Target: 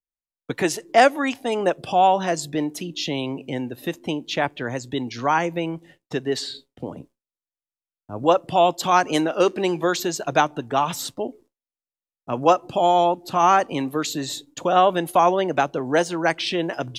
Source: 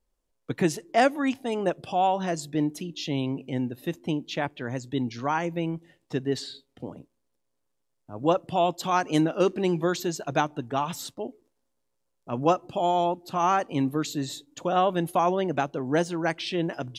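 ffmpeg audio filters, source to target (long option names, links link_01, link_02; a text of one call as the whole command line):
ffmpeg -i in.wav -filter_complex "[0:a]agate=range=-33dB:threshold=-49dB:ratio=3:detection=peak,acrossover=split=370|2600[link_01][link_02][link_03];[link_01]acompressor=threshold=-37dB:ratio=6[link_04];[link_04][link_02][link_03]amix=inputs=3:normalize=0,volume=7dB" out.wav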